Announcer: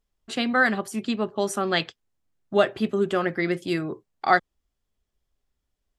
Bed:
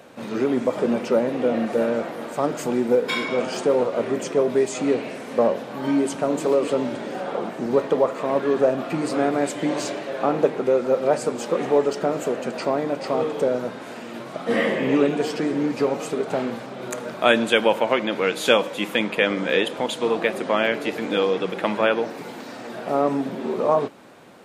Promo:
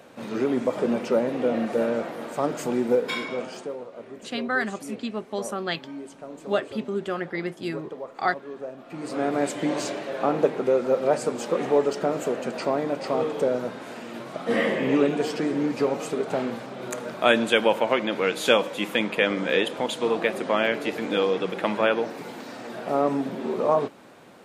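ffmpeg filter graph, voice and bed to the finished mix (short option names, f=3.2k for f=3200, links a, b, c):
-filter_complex "[0:a]adelay=3950,volume=-5dB[a];[1:a]volume=12.5dB,afade=t=out:st=2.94:d=0.84:silence=0.188365,afade=t=in:st=8.85:d=0.56:silence=0.177828[b];[a][b]amix=inputs=2:normalize=0"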